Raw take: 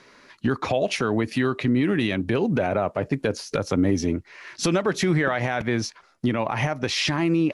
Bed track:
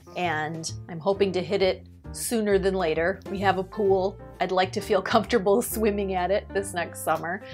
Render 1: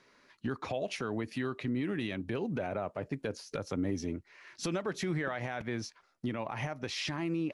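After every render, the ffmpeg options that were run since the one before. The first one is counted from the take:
-af "volume=0.251"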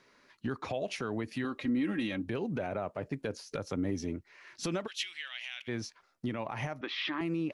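-filter_complex "[0:a]asettb=1/sr,asplit=3[s0][s1][s2];[s0]atrim=end=1.444[s3];[s1]atrim=start=1.44:end=2.26,asetpts=PTS-STARTPTS,afade=t=in:d=0.004:c=qsin,afade=t=out:st=0.816:d=0.004:c=qsin,aecho=1:1:3.7:0.65,atrim=end_sample=36162[s4];[s2]atrim=start=2.256[s5];[s3][s4]acrossfade=d=0.004:c1=hsin:c2=qsin[s6];[s6][s5]acrossfade=d=0.004:c1=qsin:c2=hsin,asplit=3[s7][s8][s9];[s7]afade=t=out:st=4.86:d=0.02[s10];[s8]highpass=f=2900:t=q:w=5.1,afade=t=in:st=4.86:d=0.02,afade=t=out:st=5.67:d=0.02[s11];[s9]afade=t=in:st=5.67:d=0.02[s12];[s10][s11][s12]amix=inputs=3:normalize=0,asettb=1/sr,asplit=3[s13][s14][s15];[s13]atrim=end=6.814[s16];[s14]atrim=start=6.81:end=7.21,asetpts=PTS-STARTPTS,afade=t=in:d=0.004:c=qsin,afade=t=out:st=0.396:d=0.004:c=qsin,highpass=f=250:w=0.5412,highpass=f=250:w=1.3066,equalizer=f=320:t=q:w=4:g=7,equalizer=f=470:t=q:w=4:g=-8,equalizer=f=690:t=q:w=4:g=-5,equalizer=f=1200:t=q:w=4:g=8,equalizer=f=1900:t=q:w=4:g=4,equalizer=f=3400:t=q:w=4:g=6,lowpass=f=3700:w=0.5412,lowpass=f=3700:w=1.3066[s17];[s15]atrim=start=7.206[s18];[s16][s17]acrossfade=d=0.004:c1=hsin:c2=qsin[s19];[s19][s18]acrossfade=d=0.004:c1=qsin:c2=hsin"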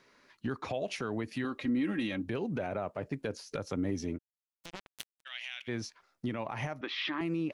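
-filter_complex "[0:a]asplit=3[s0][s1][s2];[s0]afade=t=out:st=4.17:d=0.02[s3];[s1]acrusher=bits=3:mix=0:aa=0.5,afade=t=in:st=4.17:d=0.02,afade=t=out:st=5.25:d=0.02[s4];[s2]afade=t=in:st=5.25:d=0.02[s5];[s3][s4][s5]amix=inputs=3:normalize=0"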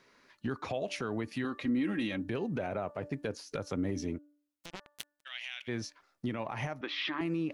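-af "bandreject=f=293.1:t=h:w=4,bandreject=f=586.2:t=h:w=4,bandreject=f=879.3:t=h:w=4,bandreject=f=1172.4:t=h:w=4,bandreject=f=1465.5:t=h:w=4,bandreject=f=1758.6:t=h:w=4"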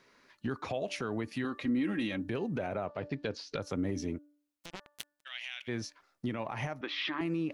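-filter_complex "[0:a]asettb=1/sr,asplit=3[s0][s1][s2];[s0]atrim=end=2.874[s3];[s1]atrim=start=2.87:end=3.62,asetpts=PTS-STARTPTS,afade=t=in:d=0.004:c=qsin,afade=t=out:st=0.746:d=0.004:c=qsin,lowpass=f=4200:t=q:w=2.2[s4];[s2]atrim=start=3.616[s5];[s3][s4]acrossfade=d=0.004:c1=hsin:c2=qsin[s6];[s6][s5]acrossfade=d=0.004:c1=qsin:c2=hsin"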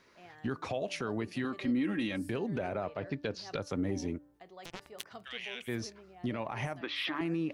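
-filter_complex "[1:a]volume=0.0398[s0];[0:a][s0]amix=inputs=2:normalize=0"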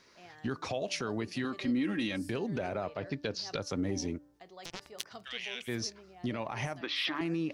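-af "equalizer=f=5300:w=1.2:g=8"

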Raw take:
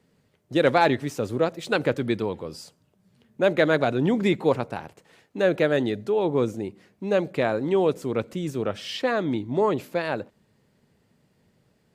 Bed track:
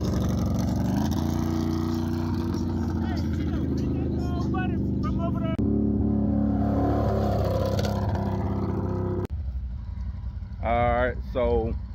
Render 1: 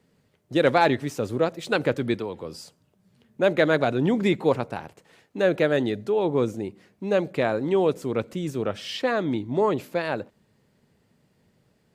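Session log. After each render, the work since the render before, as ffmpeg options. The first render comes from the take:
-filter_complex "[0:a]asettb=1/sr,asplit=3[s0][s1][s2];[s0]atrim=end=2.144[s3];[s1]atrim=start=2.14:end=2.54,asetpts=PTS-STARTPTS,afade=t=in:d=0.004:c=qsin,afade=t=out:st=0.396:d=0.004:c=qsin,acrossover=split=290|3700[s4][s5][s6];[s4]acompressor=threshold=0.0126:ratio=4[s7];[s5]acompressor=threshold=0.0355:ratio=4[s8];[s6]acompressor=threshold=0.002:ratio=4[s9];[s7][s8][s9]amix=inputs=3:normalize=0[s10];[s2]atrim=start=2.536[s11];[s3][s10]acrossfade=d=0.004:c1=hsin:c2=qsin[s12];[s12][s11]acrossfade=d=0.004:c1=qsin:c2=hsin"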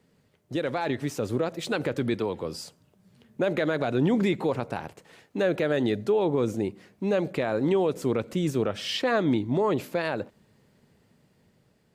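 -af "alimiter=limit=0.119:level=0:latency=1:release=99,dynaudnorm=f=580:g=5:m=1.41"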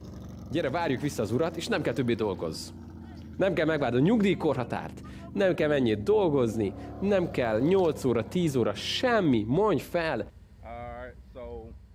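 -filter_complex "[1:a]volume=0.141[s0];[0:a][s0]amix=inputs=2:normalize=0"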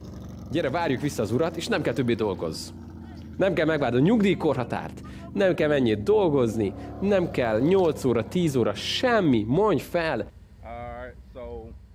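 -af "volume=1.41"

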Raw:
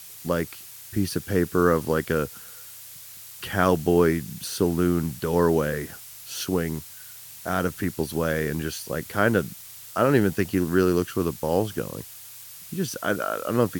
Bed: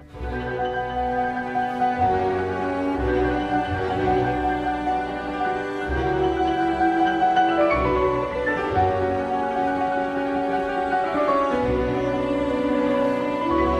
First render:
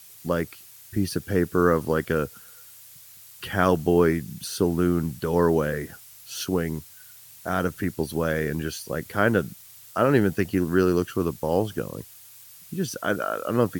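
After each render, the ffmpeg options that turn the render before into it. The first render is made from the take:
-af "afftdn=nr=6:nf=-43"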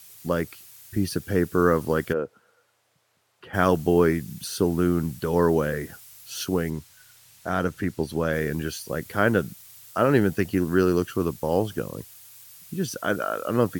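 -filter_complex "[0:a]asplit=3[s0][s1][s2];[s0]afade=t=out:st=2.12:d=0.02[s3];[s1]bandpass=f=540:t=q:w=0.92,afade=t=in:st=2.12:d=0.02,afade=t=out:st=3.53:d=0.02[s4];[s2]afade=t=in:st=3.53:d=0.02[s5];[s3][s4][s5]amix=inputs=3:normalize=0,asettb=1/sr,asplit=3[s6][s7][s8];[s6]atrim=end=6.704[s9];[s7]atrim=start=6.7:end=8.33,asetpts=PTS-STARTPTS,afade=t=in:d=0.004:c=qsin,afade=t=out:st=1.626:d=0.004:c=qsin,highshelf=f=10000:g=-11[s10];[s8]atrim=start=8.326[s11];[s9][s10]acrossfade=d=0.004:c1=hsin:c2=qsin[s12];[s12][s11]acrossfade=d=0.004:c1=qsin:c2=hsin"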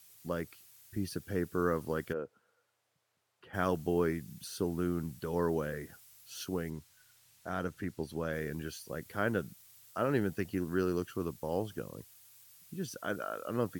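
-af "volume=0.282"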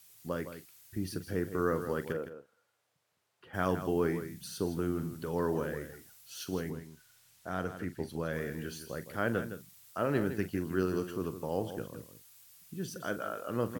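-filter_complex "[0:a]asplit=2[s0][s1];[s1]adelay=43,volume=0.224[s2];[s0][s2]amix=inputs=2:normalize=0,aecho=1:1:162:0.299"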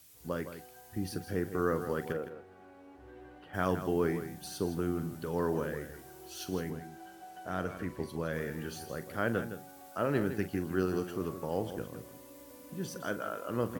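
-filter_complex "[1:a]volume=0.0299[s0];[0:a][s0]amix=inputs=2:normalize=0"

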